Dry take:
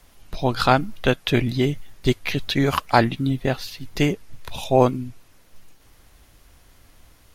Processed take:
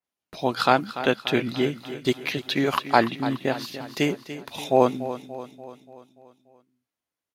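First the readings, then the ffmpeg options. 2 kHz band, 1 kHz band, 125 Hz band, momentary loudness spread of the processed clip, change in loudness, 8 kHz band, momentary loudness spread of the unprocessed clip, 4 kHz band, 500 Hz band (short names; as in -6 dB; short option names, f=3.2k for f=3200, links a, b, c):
-1.5 dB, -1.0 dB, -10.0 dB, 15 LU, -3.0 dB, -3.0 dB, 15 LU, -2.0 dB, -1.5 dB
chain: -filter_complex "[0:a]highpass=210,agate=range=-31dB:threshold=-48dB:ratio=16:detection=peak,asplit=2[a][b];[b]aecho=0:1:290|580|870|1160|1450|1740:0.224|0.121|0.0653|0.0353|0.019|0.0103[c];[a][c]amix=inputs=2:normalize=0,adynamicequalizer=threshold=0.00891:dfrequency=4800:dqfactor=0.7:tfrequency=4800:tqfactor=0.7:attack=5:release=100:ratio=0.375:range=2.5:mode=cutabove:tftype=highshelf,volume=-1.5dB"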